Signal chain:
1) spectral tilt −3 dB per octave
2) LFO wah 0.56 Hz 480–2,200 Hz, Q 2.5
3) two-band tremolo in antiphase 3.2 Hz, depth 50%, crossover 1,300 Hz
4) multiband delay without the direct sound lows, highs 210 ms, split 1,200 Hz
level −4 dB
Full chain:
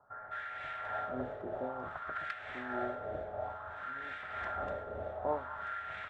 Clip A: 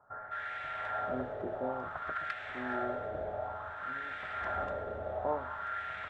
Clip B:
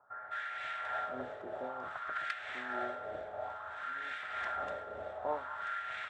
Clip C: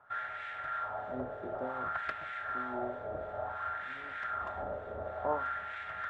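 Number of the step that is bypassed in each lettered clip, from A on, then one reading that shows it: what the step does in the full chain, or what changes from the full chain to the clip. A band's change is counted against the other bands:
3, change in crest factor −2.0 dB
1, 125 Hz band −10.0 dB
4, echo-to-direct ratio 3.0 dB to none audible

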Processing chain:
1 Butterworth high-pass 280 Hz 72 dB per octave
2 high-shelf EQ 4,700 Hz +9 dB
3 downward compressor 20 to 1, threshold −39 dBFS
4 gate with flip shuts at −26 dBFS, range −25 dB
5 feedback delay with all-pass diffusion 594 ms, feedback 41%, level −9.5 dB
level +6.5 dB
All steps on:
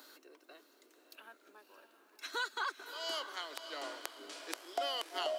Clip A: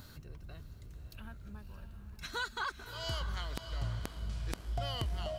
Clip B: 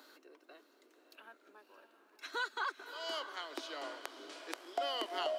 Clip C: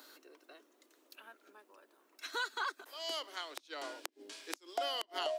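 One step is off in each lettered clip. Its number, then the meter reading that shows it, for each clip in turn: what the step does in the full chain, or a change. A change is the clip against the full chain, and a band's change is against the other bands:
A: 1, 250 Hz band +8.5 dB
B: 2, 8 kHz band −5.5 dB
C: 5, echo-to-direct ratio −8.5 dB to none audible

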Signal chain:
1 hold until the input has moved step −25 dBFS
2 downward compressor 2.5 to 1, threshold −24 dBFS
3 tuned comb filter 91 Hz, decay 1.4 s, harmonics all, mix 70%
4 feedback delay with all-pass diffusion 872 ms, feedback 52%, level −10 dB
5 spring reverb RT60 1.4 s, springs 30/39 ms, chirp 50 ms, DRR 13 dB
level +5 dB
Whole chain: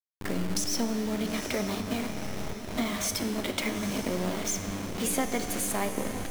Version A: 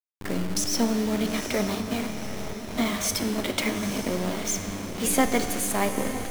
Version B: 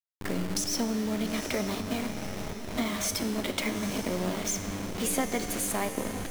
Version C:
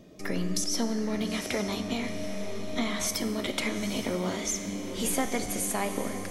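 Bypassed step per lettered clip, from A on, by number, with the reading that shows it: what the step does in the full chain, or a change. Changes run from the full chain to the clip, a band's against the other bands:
2, change in integrated loudness +4.0 LU
5, echo-to-direct ratio −7.0 dB to −8.5 dB
1, distortion level −8 dB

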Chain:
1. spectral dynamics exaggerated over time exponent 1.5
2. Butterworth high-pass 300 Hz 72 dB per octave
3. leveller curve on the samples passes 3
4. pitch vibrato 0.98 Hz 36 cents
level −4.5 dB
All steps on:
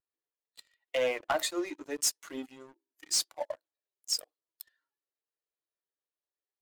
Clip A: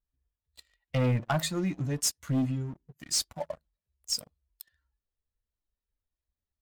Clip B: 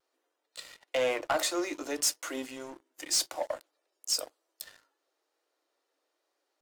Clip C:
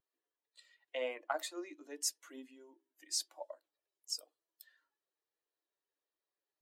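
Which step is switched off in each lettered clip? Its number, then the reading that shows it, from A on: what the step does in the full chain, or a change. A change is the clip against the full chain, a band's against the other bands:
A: 2, 250 Hz band +9.5 dB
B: 1, change in momentary loudness spread −3 LU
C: 3, change in crest factor +8.5 dB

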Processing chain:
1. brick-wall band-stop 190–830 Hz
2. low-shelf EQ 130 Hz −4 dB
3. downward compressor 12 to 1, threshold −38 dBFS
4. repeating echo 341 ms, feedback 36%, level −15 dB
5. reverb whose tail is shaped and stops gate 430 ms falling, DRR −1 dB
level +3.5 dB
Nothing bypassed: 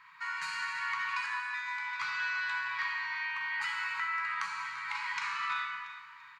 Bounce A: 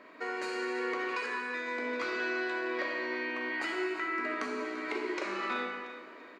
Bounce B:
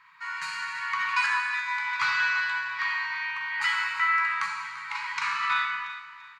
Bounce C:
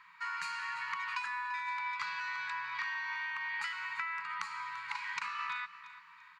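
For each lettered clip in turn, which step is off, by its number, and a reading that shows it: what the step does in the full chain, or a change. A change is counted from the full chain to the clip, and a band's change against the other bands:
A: 1, change in crest factor −2.0 dB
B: 3, average gain reduction 4.5 dB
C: 5, change in crest factor +2.5 dB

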